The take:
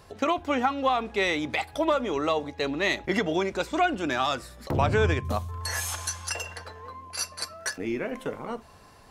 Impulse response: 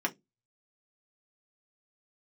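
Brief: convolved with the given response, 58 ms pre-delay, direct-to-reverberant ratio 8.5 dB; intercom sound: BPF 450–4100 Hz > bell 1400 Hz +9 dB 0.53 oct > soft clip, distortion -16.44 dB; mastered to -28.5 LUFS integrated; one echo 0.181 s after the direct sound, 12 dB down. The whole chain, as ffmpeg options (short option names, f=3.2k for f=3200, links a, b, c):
-filter_complex "[0:a]aecho=1:1:181:0.251,asplit=2[a][b];[1:a]atrim=start_sample=2205,adelay=58[c];[b][c]afir=irnorm=-1:irlink=0,volume=-15.5dB[d];[a][d]amix=inputs=2:normalize=0,highpass=450,lowpass=4.1k,equalizer=f=1.4k:t=o:w=0.53:g=9,asoftclip=threshold=-16dB,volume=-0.5dB"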